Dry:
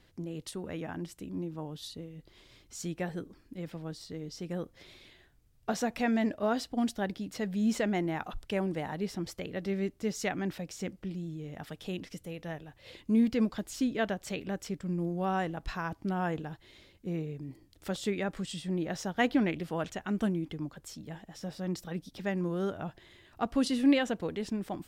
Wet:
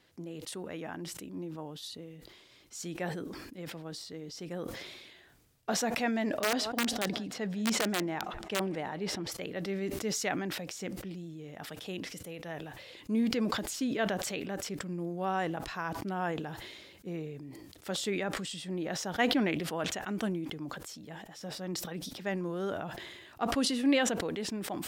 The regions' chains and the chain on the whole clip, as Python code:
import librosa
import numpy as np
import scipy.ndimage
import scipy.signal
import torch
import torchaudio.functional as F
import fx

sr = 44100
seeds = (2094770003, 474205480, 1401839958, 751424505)

y = fx.chain(x, sr, fx.high_shelf(hz=8100.0, db=-11.0),
    fx.echo_thinned(ms=178, feedback_pct=62, hz=160.0, wet_db=-23.5),
    fx.overflow_wrap(gain_db=21.0), at=(6.4, 9.32))
y = fx.highpass(y, sr, hz=290.0, slope=6)
y = fx.sustainer(y, sr, db_per_s=36.0)